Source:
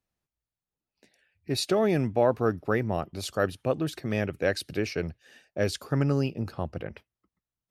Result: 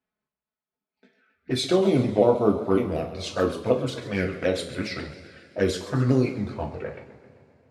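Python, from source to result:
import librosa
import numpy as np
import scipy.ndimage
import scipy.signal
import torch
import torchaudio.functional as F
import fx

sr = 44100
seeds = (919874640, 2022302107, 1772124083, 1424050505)

y = fx.pitch_ramps(x, sr, semitones=-3.0, every_ms=185)
y = fx.highpass(y, sr, hz=190.0, slope=6)
y = fx.env_lowpass(y, sr, base_hz=2500.0, full_db=-25.0)
y = fx.env_flanger(y, sr, rest_ms=4.7, full_db=-23.5)
y = fx.rev_double_slope(y, sr, seeds[0], early_s=0.35, late_s=3.3, knee_db=-22, drr_db=2.0)
y = fx.echo_warbled(y, sr, ms=132, feedback_pct=53, rate_hz=2.8, cents=162, wet_db=-14.0)
y = y * librosa.db_to_amplitude(5.5)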